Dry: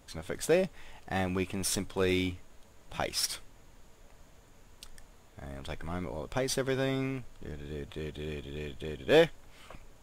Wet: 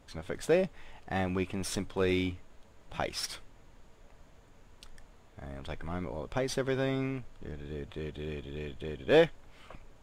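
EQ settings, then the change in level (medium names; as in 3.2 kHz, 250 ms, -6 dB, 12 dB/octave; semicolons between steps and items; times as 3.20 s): low-pass 3.6 kHz 6 dB/octave; 0.0 dB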